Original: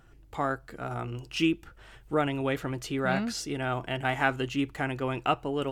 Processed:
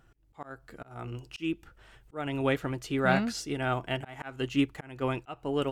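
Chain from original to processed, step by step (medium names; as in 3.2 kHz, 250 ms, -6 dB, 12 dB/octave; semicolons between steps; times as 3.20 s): slow attack 247 ms; upward expansion 1.5:1, over -40 dBFS; trim +3.5 dB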